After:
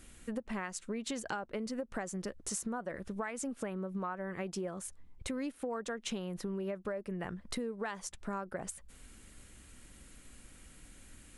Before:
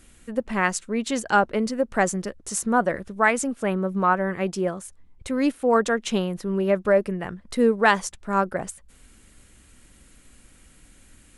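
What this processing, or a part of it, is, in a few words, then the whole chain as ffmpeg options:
serial compression, peaks first: -af "acompressor=threshold=-28dB:ratio=5,acompressor=threshold=-33dB:ratio=3,volume=-2.5dB"

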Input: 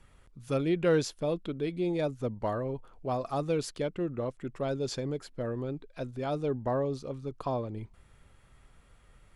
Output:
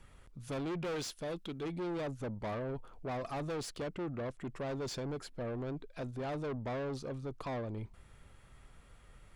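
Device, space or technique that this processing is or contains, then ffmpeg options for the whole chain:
saturation between pre-emphasis and de-emphasis: -filter_complex "[0:a]asettb=1/sr,asplit=3[a][b][c];[a]atrim=end=0.964[d];[b]atrim=start=0.96:end=1.63,asetpts=PTS-STARTPTS,afade=t=in:d=0.004:c=qsin,afade=t=out:st=0.666:d=0.004:c=qsin,tiltshelf=f=1.5k:g=-5[e];[c]atrim=start=1.626[f];[d][e]acrossfade=d=0.004:c1=hsin:c2=qsin[g];[g][f]acrossfade=d=0.004:c1=qsin:c2=hsin,highshelf=f=6.3k:g=9.5,asoftclip=type=tanh:threshold=-36dB,highshelf=f=6.3k:g=-9.5,volume=1dB"

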